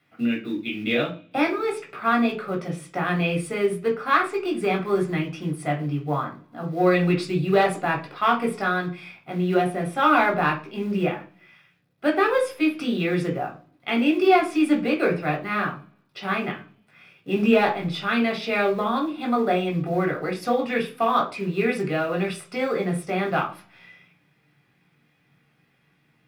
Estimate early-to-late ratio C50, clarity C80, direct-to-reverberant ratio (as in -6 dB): 10.5 dB, 17.0 dB, -1.5 dB